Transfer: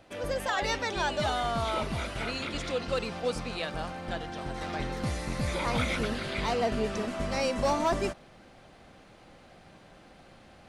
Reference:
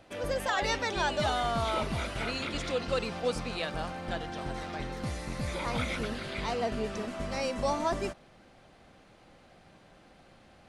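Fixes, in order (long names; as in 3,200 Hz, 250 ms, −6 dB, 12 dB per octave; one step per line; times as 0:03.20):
clipped peaks rebuilt −20.5 dBFS
level correction −3.5 dB, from 0:04.61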